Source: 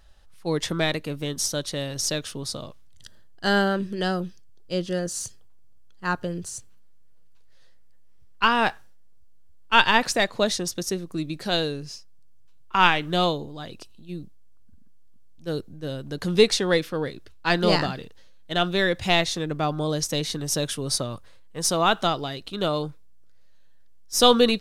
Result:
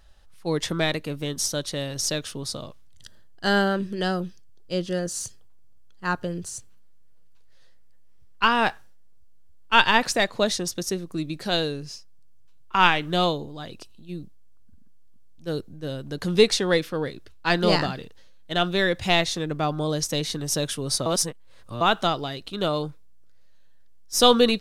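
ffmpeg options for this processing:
-filter_complex "[0:a]asplit=3[s0][s1][s2];[s0]atrim=end=21.062[s3];[s1]atrim=start=21.058:end=21.812,asetpts=PTS-STARTPTS,areverse[s4];[s2]atrim=start=21.808[s5];[s3][s4]acrossfade=d=0.004:c1=hsin:c2=hsin[s6];[s6][s5]acrossfade=d=0.004:c1=hsin:c2=hsin"

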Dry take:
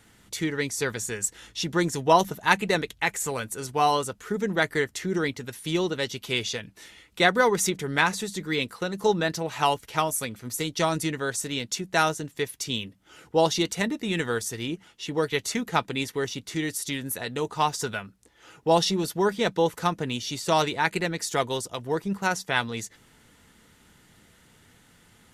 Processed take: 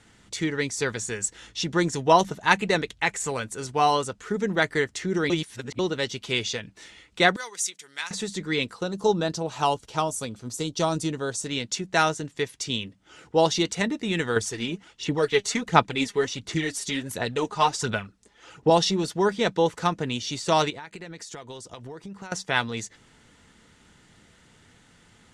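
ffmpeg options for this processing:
-filter_complex "[0:a]asettb=1/sr,asplit=3[s0][s1][s2];[s0]atrim=end=7.364[s3];[s1]atrim=start=7.36:end=8.11,asetpts=PTS-STARTPTS,afade=t=in:d=0.004:c=qsin,afade=t=out:st=0.746:d=0.004:c=qsin,aderivative[s4];[s2]atrim=start=8.106[s5];[s3][s4]acrossfade=d=0.004:c1=hsin:c2=qsin[s6];[s6][s5]acrossfade=d=0.004:c1=qsin:c2=hsin,asettb=1/sr,asplit=3[s7][s8][s9];[s7]atrim=end=8.744[s10];[s8]atrim=start=8.74:end=11.46,asetpts=PTS-STARTPTS,afade=t=in:d=0.004:c=qsin,afade=t=out:st=2.716:d=0.004:c=qsin,equalizer=f=2000:t=o:w=0.83:g=-11[s11];[s9]atrim=start=11.456[s12];[s10][s11]acrossfade=d=0.004:c1=hsin:c2=qsin[s13];[s13][s12]acrossfade=d=0.004:c1=qsin:c2=hsin,asettb=1/sr,asplit=3[s14][s15][s16];[s14]atrim=end=14.364[s17];[s15]atrim=start=14.36:end=18.7,asetpts=PTS-STARTPTS,afade=t=in:d=0.004:c=qsin,afade=t=out:st=4.336:d=0.004:c=qsin,aphaser=in_gain=1:out_gain=1:delay=5:decay=0.54:speed=1.4:type=sinusoidal[s18];[s16]atrim=start=18.696[s19];[s17][s18]acrossfade=d=0.004:c1=hsin:c2=qsin[s20];[s20][s19]acrossfade=d=0.004:c1=qsin:c2=hsin,asettb=1/sr,asplit=3[s21][s22][s23];[s21]atrim=end=20.704[s24];[s22]atrim=start=20.7:end=22.32,asetpts=PTS-STARTPTS,afade=t=in:d=0.004:c=qsin,afade=t=out:st=1.616:d=0.004:c=qsin,acompressor=threshold=0.0158:ratio=16:attack=3.2:release=140:knee=1:detection=peak[s25];[s23]atrim=start=22.316[s26];[s24][s25]acrossfade=d=0.004:c1=hsin:c2=qsin[s27];[s27][s26]acrossfade=d=0.004:c1=qsin:c2=hsin,asplit=3[s28][s29][s30];[s28]atrim=end=5.302[s31];[s29]atrim=start=5.298:end=5.792,asetpts=PTS-STARTPTS,areverse[s32];[s30]atrim=start=5.788[s33];[s31][s32]acrossfade=d=0.004:c1=hsin:c2=hsin[s34];[s34][s33]acrossfade=d=0.004:c1=hsin:c2=hsin,lowpass=f=8700:w=0.5412,lowpass=f=8700:w=1.3066,volume=1.12"

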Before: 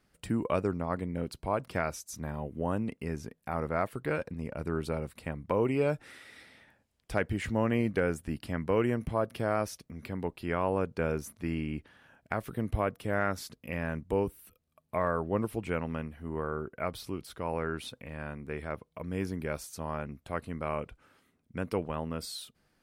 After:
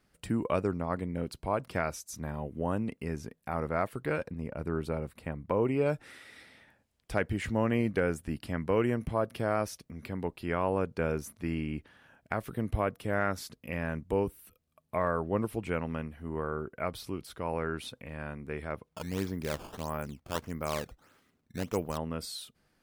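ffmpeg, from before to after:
-filter_complex "[0:a]asettb=1/sr,asplit=3[s0][s1][s2];[s0]atrim=end=4.304[s3];[s1]atrim=start=4.3:end=5.86,asetpts=PTS-STARTPTS,afade=t=in:d=0.004:c=qsin,afade=t=out:st=1.556:d=0.004:c=qsin,equalizer=f=6600:w=0.37:g=-5.5[s4];[s2]atrim=start=5.856[s5];[s3][s4]acrossfade=d=0.004:c1=hsin:c2=qsin[s6];[s6][s5]acrossfade=d=0.004:c1=qsin:c2=hsin,asettb=1/sr,asplit=3[s7][s8][s9];[s7]atrim=end=18.874[s10];[s8]atrim=start=18.87:end=21.98,asetpts=PTS-STARTPTS,afade=t=in:d=0.004:c=qsin,afade=t=out:st=3.106:d=0.004:c=qsin,acrusher=samples=13:mix=1:aa=0.000001:lfo=1:lforange=20.8:lforate=1.6[s11];[s9]atrim=start=21.976[s12];[s10][s11]acrossfade=d=0.004:c1=hsin:c2=qsin[s13];[s13][s12]acrossfade=d=0.004:c1=qsin:c2=hsin"

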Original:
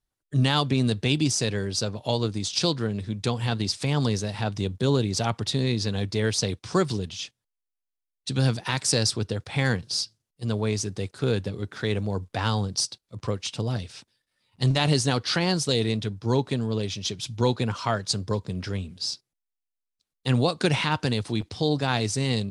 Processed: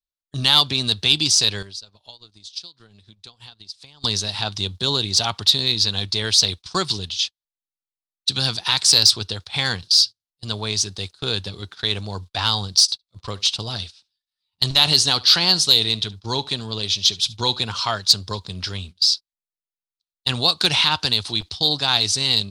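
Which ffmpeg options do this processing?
-filter_complex "[0:a]asettb=1/sr,asplit=3[s0][s1][s2];[s0]atrim=end=1.624[s3];[s1]atrim=start=1.62:end=4.04,asetpts=PTS-STARTPTS,afade=t=in:d=0.004:c=qsin,afade=t=out:st=2.416:d=0.004:c=qsin,acompressor=threshold=0.02:ratio=16:attack=3.2:release=140:knee=1:detection=peak[s4];[s2]atrim=start=4.036[s5];[s3][s4]acrossfade=d=0.004:c1=hsin:c2=qsin[s6];[s6][s5]acrossfade=d=0.004:c1=qsin:c2=hsin,asettb=1/sr,asplit=3[s7][s8][s9];[s7]atrim=end=12.814[s10];[s8]atrim=start=12.81:end=17.93,asetpts=PTS-STARTPTS,afade=t=in:d=0.004:c=qsin,afade=t=out:st=5.116:d=0.004:c=qsin,aecho=1:1:71:0.0794,atrim=end_sample=225792[s11];[s9]atrim=start=17.926[s12];[s10][s11]acrossfade=d=0.004:c1=hsin:c2=qsin[s13];[s13][s12]acrossfade=d=0.004:c1=qsin:c2=hsin,agate=range=0.0891:threshold=0.0158:ratio=16:detection=peak,equalizer=f=125:t=o:w=1:g=-11,equalizer=f=250:t=o:w=1:g=-10,equalizer=f=500:t=o:w=1:g=-10,equalizer=f=2000:t=o:w=1:g=-7,equalizer=f=4000:t=o:w=1:g=11,equalizer=f=8000:t=o:w=1:g=-3,acontrast=74,volume=1.12"

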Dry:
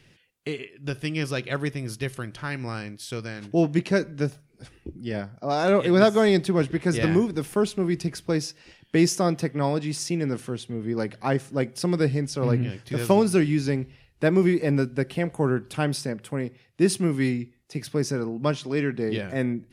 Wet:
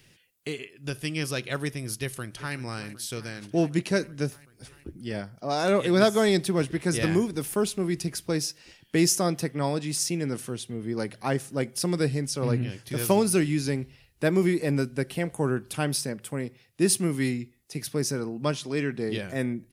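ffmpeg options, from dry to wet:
-filter_complex "[0:a]asplit=2[s0][s1];[s1]afade=t=in:st=2.01:d=0.01,afade=t=out:st=2.55:d=0.01,aecho=0:1:380|760|1140|1520|1900|2280|2660|3040|3420|3800|4180|4560:0.158489|0.126791|0.101433|0.0811465|0.0649172|0.0519338|0.041547|0.0332376|0.0265901|0.0212721|0.0170177|0.0136141[s2];[s0][s2]amix=inputs=2:normalize=0,aemphasis=mode=production:type=50kf,volume=0.708"

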